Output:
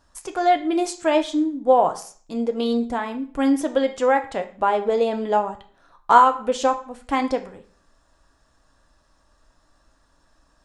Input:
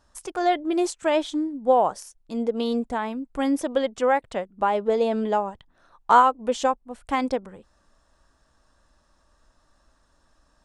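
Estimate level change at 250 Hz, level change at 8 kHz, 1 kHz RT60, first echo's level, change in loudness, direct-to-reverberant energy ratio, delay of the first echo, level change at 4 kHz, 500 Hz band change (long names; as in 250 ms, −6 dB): +3.0 dB, +2.0 dB, 0.45 s, no echo audible, +2.5 dB, 6.0 dB, no echo audible, +2.0 dB, +2.5 dB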